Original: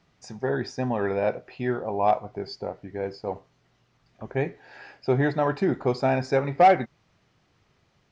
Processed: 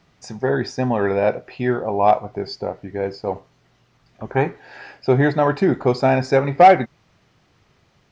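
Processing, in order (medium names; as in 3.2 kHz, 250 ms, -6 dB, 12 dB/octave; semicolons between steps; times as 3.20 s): time-frequency box 4.32–4.57 s, 760–1600 Hz +10 dB; trim +6.5 dB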